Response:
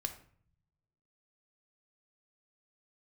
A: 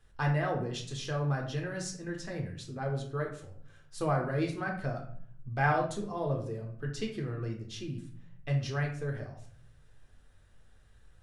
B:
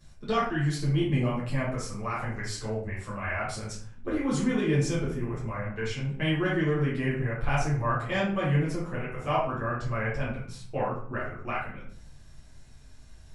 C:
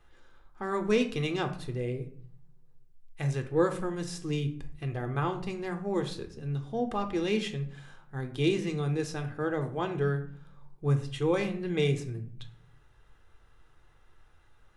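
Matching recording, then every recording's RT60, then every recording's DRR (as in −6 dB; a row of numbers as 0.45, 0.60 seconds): C; 0.55, 0.55, 0.55 seconds; 1.0, −8.5, 6.5 decibels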